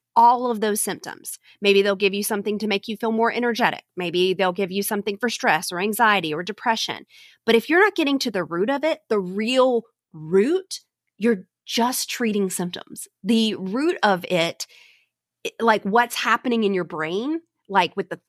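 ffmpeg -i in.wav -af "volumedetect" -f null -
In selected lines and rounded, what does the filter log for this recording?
mean_volume: -22.2 dB
max_volume: -3.9 dB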